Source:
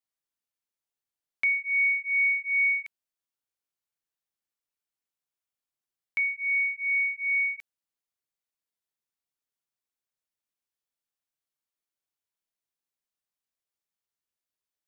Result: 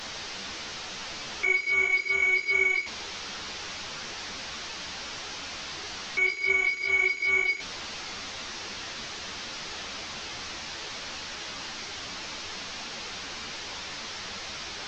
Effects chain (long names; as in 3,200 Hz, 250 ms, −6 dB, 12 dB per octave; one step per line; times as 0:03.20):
linear delta modulator 32 kbit/s, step −33 dBFS
string-ensemble chorus
level +5.5 dB